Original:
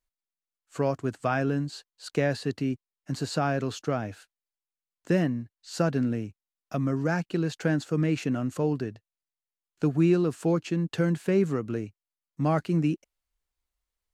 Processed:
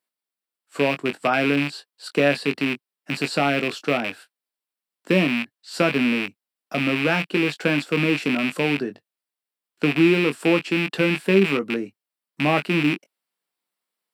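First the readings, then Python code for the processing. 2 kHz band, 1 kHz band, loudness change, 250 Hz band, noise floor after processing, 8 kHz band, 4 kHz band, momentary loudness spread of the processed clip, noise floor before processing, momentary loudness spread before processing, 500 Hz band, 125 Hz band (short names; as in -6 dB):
+14.0 dB, +6.5 dB, +6.0 dB, +5.0 dB, under -85 dBFS, +3.0 dB, +13.5 dB, 10 LU, under -85 dBFS, 11 LU, +5.5 dB, -0.5 dB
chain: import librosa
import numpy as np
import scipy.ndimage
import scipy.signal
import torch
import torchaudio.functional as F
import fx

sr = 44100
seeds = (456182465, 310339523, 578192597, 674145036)

y = fx.rattle_buzz(x, sr, strikes_db=-33.0, level_db=-19.0)
y = scipy.signal.sosfilt(scipy.signal.butter(4, 180.0, 'highpass', fs=sr, output='sos'), y)
y = fx.peak_eq(y, sr, hz=6500.0, db=-13.0, octaves=0.21)
y = fx.doubler(y, sr, ms=21.0, db=-9.0)
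y = F.gain(torch.from_numpy(y), 5.5).numpy()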